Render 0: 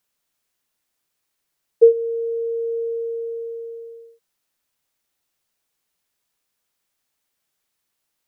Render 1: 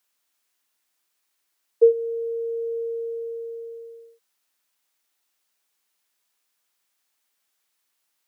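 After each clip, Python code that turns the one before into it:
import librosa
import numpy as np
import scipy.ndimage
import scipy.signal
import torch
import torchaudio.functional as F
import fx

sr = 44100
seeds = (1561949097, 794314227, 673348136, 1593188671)

y = scipy.signal.sosfilt(scipy.signal.butter(2, 310.0, 'highpass', fs=sr, output='sos'), x)
y = fx.peak_eq(y, sr, hz=490.0, db=-5.0, octaves=1.1)
y = y * librosa.db_to_amplitude(2.0)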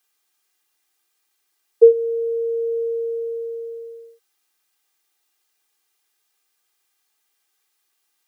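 y = x + 0.71 * np.pad(x, (int(2.5 * sr / 1000.0), 0))[:len(x)]
y = y * librosa.db_to_amplitude(1.5)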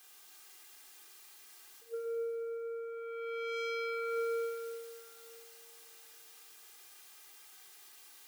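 y = fx.over_compress(x, sr, threshold_db=-30.0, ratio=-0.5)
y = 10.0 ** (-34.5 / 20.0) * np.tanh(y / 10.0 ** (-34.5 / 20.0))
y = fx.rev_plate(y, sr, seeds[0], rt60_s=2.9, hf_ratio=0.9, predelay_ms=0, drr_db=-0.5)
y = y * librosa.db_to_amplitude(3.5)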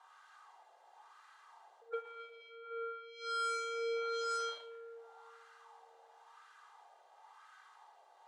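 y = fx.wah_lfo(x, sr, hz=0.96, low_hz=620.0, high_hz=1400.0, q=2.9)
y = fx.cheby_harmonics(y, sr, harmonics=(7,), levels_db=(-10,), full_scale_db=-38.5)
y = fx.cabinet(y, sr, low_hz=430.0, low_slope=24, high_hz=9800.0, hz=(600.0, 940.0, 2400.0, 5200.0, 8800.0), db=(6, 9, -7, -4, -3))
y = y * librosa.db_to_amplitude(8.0)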